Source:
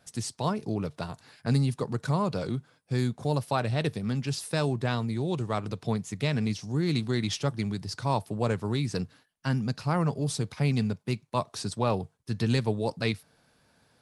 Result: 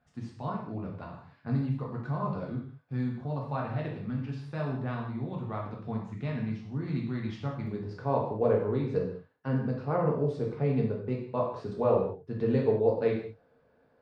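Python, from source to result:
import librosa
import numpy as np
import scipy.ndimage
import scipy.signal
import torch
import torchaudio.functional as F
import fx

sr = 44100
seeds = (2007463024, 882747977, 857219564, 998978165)

y = scipy.signal.sosfilt(scipy.signal.butter(2, 1700.0, 'lowpass', fs=sr, output='sos'), x)
y = fx.peak_eq(y, sr, hz=460.0, db=fx.steps((0.0, -5.5), (7.67, 11.0)), octaves=0.77)
y = fx.rev_gated(y, sr, seeds[0], gate_ms=230, shape='falling', drr_db=-2.0)
y = y * 10.0 ** (-7.5 / 20.0)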